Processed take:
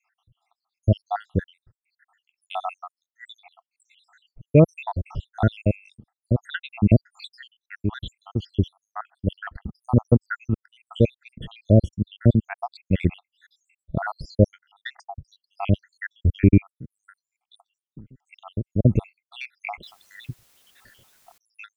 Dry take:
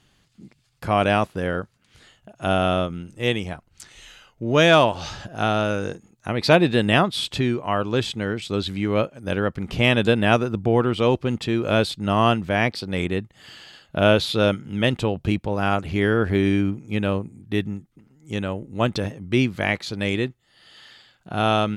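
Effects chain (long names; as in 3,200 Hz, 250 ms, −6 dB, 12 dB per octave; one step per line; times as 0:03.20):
time-frequency cells dropped at random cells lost 85%
RIAA equalisation playback
0:19.83–0:21.38: bit-depth reduction 10 bits, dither triangular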